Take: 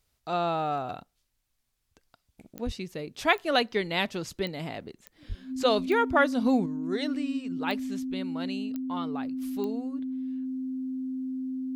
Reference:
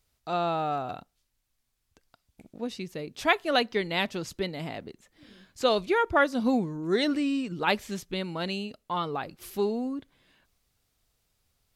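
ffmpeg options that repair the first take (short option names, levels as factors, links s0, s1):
-filter_complex "[0:a]adeclick=t=4,bandreject=f=260:w=30,asplit=3[s0][s1][s2];[s0]afade=t=out:st=2.65:d=0.02[s3];[s1]highpass=f=140:w=0.5412,highpass=f=140:w=1.3066,afade=t=in:st=2.65:d=0.02,afade=t=out:st=2.77:d=0.02[s4];[s2]afade=t=in:st=2.77:d=0.02[s5];[s3][s4][s5]amix=inputs=3:normalize=0,asplit=3[s6][s7][s8];[s6]afade=t=out:st=5.28:d=0.02[s9];[s7]highpass=f=140:w=0.5412,highpass=f=140:w=1.3066,afade=t=in:st=5.28:d=0.02,afade=t=out:st=5.4:d=0.02[s10];[s8]afade=t=in:st=5.4:d=0.02[s11];[s9][s10][s11]amix=inputs=3:normalize=0,asetnsamples=n=441:p=0,asendcmd='6.66 volume volume 6dB',volume=1"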